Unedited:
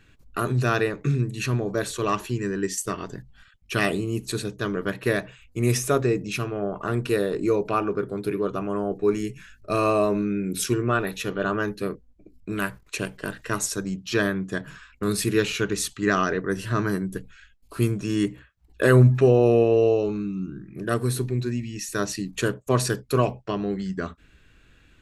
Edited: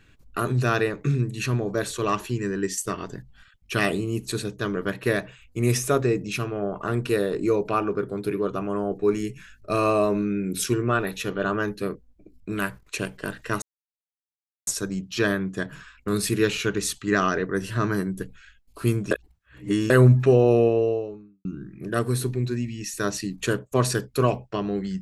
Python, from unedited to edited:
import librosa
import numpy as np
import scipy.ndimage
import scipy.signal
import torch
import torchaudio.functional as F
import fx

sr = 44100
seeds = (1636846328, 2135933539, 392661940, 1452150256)

y = fx.studio_fade_out(x, sr, start_s=19.42, length_s=0.98)
y = fx.edit(y, sr, fx.insert_silence(at_s=13.62, length_s=1.05),
    fx.reverse_span(start_s=18.06, length_s=0.79), tone=tone)